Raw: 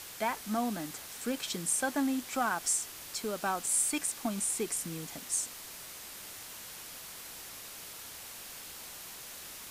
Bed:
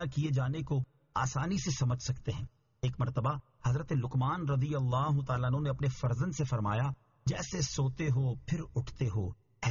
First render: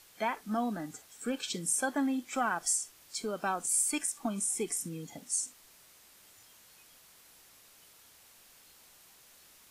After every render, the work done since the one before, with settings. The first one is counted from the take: noise print and reduce 13 dB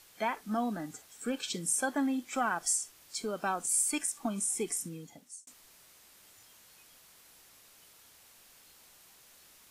4.76–5.47 fade out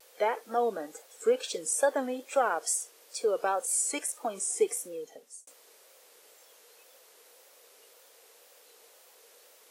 resonant high-pass 480 Hz, resonance Q 6; wow and flutter 100 cents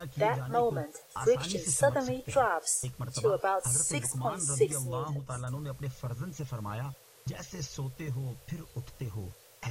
add bed -5.5 dB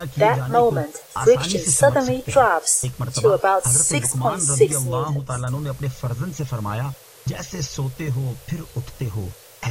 gain +11.5 dB; limiter -3 dBFS, peak gain reduction 1.5 dB

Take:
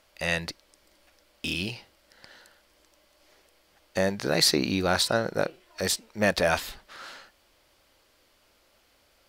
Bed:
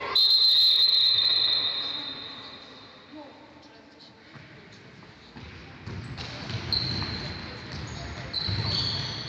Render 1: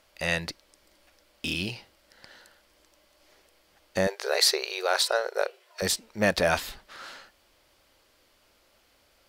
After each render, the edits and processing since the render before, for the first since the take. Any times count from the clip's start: 4.07–5.82 brick-wall FIR high-pass 370 Hz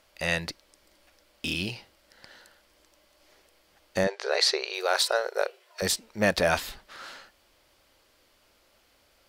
4.04–4.74 BPF 110–5800 Hz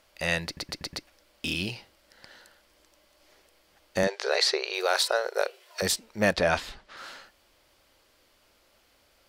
0.45 stutter in place 0.12 s, 5 plays; 4.03–5.82 three-band squash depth 40%; 6.33–6.97 air absorption 61 m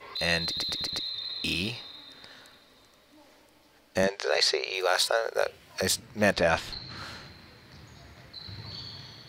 add bed -13.5 dB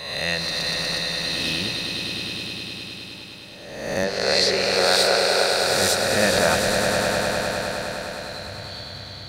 spectral swells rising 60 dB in 1.08 s; swelling echo 0.102 s, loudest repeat 5, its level -8 dB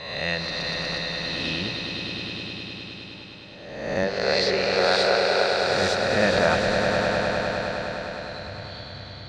air absorption 160 m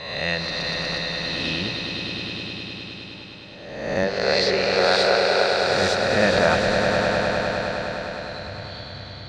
gain +2 dB

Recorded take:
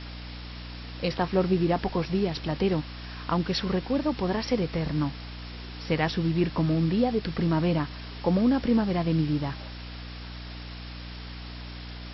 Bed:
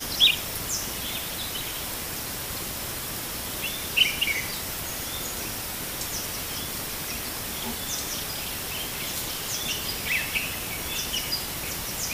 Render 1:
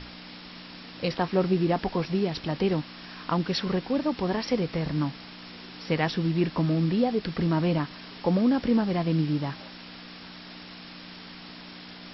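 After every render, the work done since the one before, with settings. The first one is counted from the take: notches 60/120 Hz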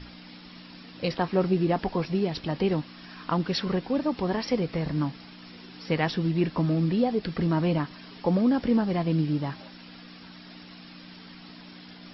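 denoiser 7 dB, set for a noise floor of -44 dBFS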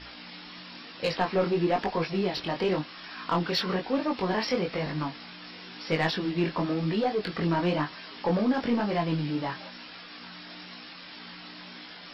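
overdrive pedal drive 14 dB, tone 5100 Hz, clips at -12 dBFS; chorus 1 Hz, delay 18.5 ms, depth 5.2 ms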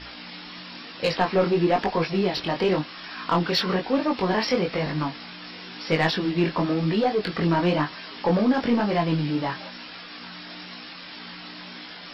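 gain +4.5 dB

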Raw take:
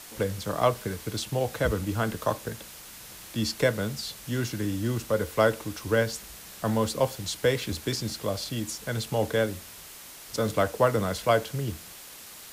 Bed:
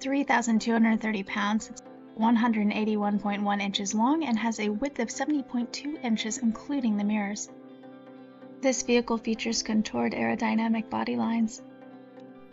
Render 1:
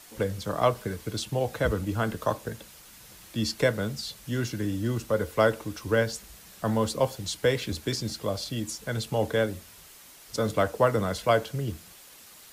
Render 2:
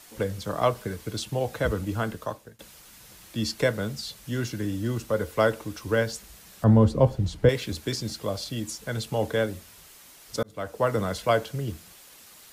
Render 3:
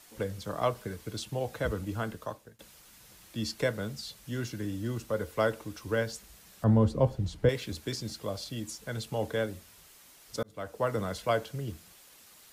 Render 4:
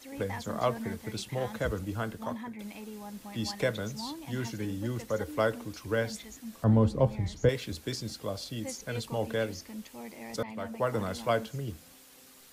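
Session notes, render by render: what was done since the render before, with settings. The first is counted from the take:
denoiser 6 dB, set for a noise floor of -45 dBFS
1.97–2.59 fade out, to -22.5 dB; 6.64–7.49 tilt -4 dB/oct; 10.43–10.96 fade in
gain -5.5 dB
add bed -16.5 dB

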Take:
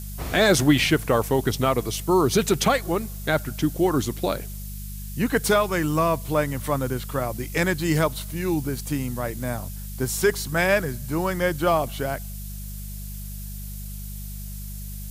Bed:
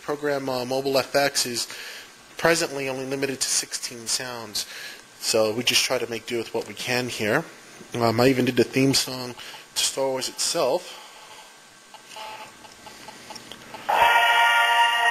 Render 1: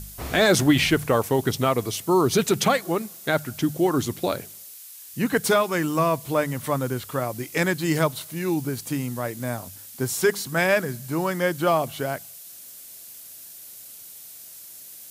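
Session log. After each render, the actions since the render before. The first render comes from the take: de-hum 50 Hz, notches 4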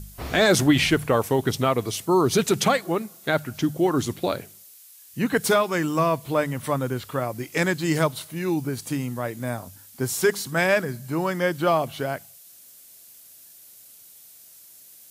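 noise print and reduce 6 dB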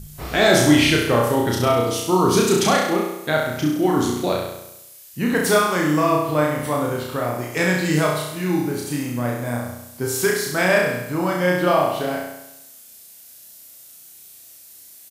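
doubler 21 ms -13.5 dB; flutter echo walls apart 5.7 m, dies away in 0.87 s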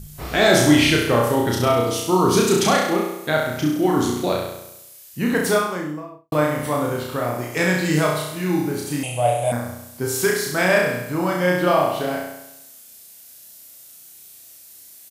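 5.28–6.32 studio fade out; 9.03–9.52 EQ curve 140 Hz 0 dB, 220 Hz -22 dB, 430 Hz -2 dB, 710 Hz +15 dB, 1000 Hz -3 dB, 1800 Hz -10 dB, 2800 Hz +14 dB, 5100 Hz -6 dB, 10000 Hz +14 dB, 15000 Hz -23 dB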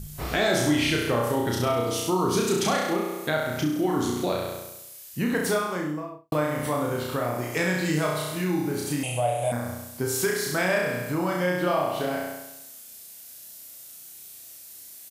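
compressor 2:1, threshold -26 dBFS, peak gain reduction 9.5 dB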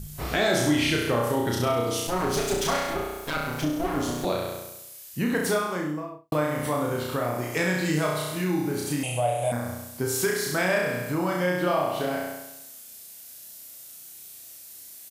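2.07–4.25 minimum comb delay 7.2 ms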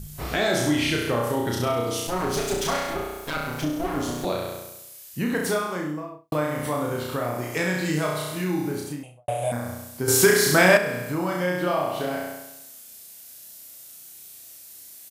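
8.66–9.28 studio fade out; 10.08–10.77 gain +8.5 dB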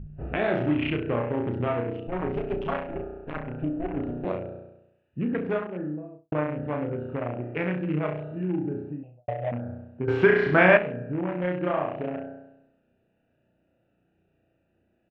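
Wiener smoothing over 41 samples; Chebyshev low-pass 2800 Hz, order 4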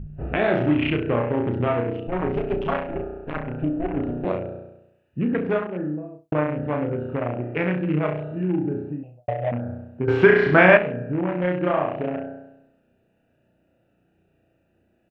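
gain +4.5 dB; limiter -2 dBFS, peak gain reduction 1.5 dB

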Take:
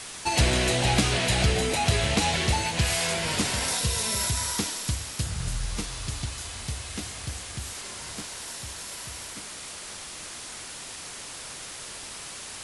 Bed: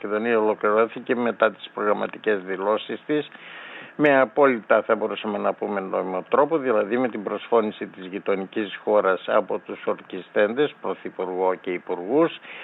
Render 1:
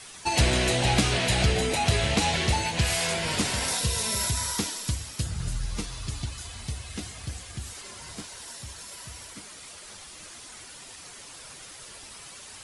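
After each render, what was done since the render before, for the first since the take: denoiser 8 dB, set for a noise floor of -40 dBFS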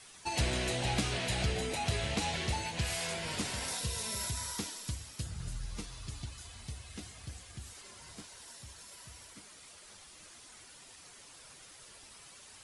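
gain -9.5 dB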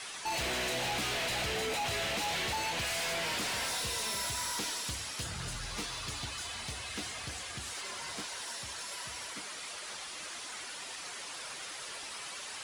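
overdrive pedal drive 22 dB, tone 3800 Hz, clips at -19.5 dBFS; soft clip -31.5 dBFS, distortion -11 dB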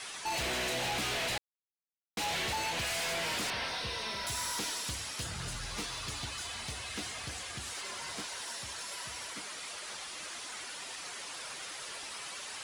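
1.38–2.17 mute; 3.5–4.27 polynomial smoothing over 15 samples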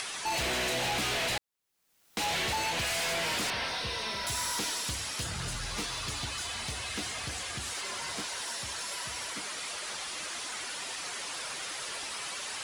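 in parallel at -0.5 dB: limiter -39 dBFS, peak gain reduction 9.5 dB; on the sum: upward compressor, threshold -35 dBFS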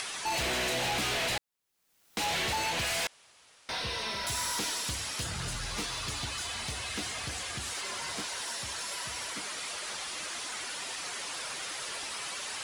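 3.07–3.69 room tone

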